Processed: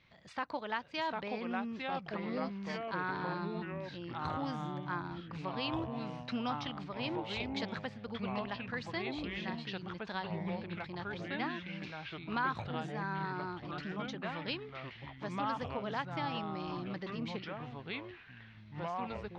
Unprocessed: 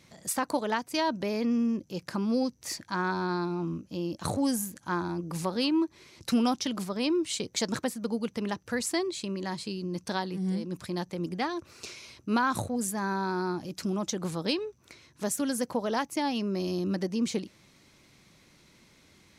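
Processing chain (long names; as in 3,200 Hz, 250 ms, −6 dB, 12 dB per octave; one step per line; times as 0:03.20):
low-pass filter 3,500 Hz 24 dB per octave
parametric band 290 Hz −10.5 dB 2.8 octaves
delay with pitch and tempo change per echo 677 ms, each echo −3 semitones, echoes 3
level −3 dB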